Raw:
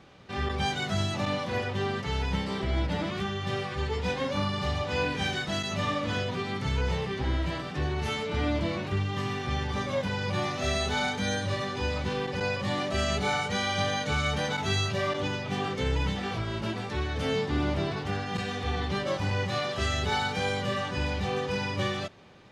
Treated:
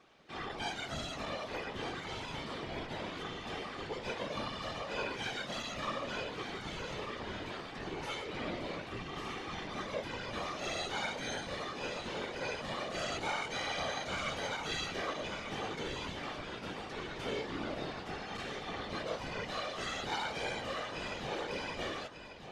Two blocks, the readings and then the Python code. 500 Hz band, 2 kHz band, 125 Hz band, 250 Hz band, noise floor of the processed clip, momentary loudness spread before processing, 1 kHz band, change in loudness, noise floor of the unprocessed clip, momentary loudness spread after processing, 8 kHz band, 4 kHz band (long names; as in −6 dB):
−8.5 dB, −7.5 dB, −17.5 dB, −11.5 dB, −45 dBFS, 4 LU, −7.5 dB, −9.0 dB, −36 dBFS, 5 LU, −7.0 dB, −7.0 dB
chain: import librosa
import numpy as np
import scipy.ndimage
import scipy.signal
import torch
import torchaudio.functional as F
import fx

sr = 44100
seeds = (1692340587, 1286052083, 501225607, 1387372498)

p1 = fx.highpass(x, sr, hz=320.0, slope=6)
p2 = fx.whisperise(p1, sr, seeds[0])
p3 = p2 + fx.echo_single(p2, sr, ms=1193, db=-9.0, dry=0)
y = F.gain(torch.from_numpy(p3), -7.5).numpy()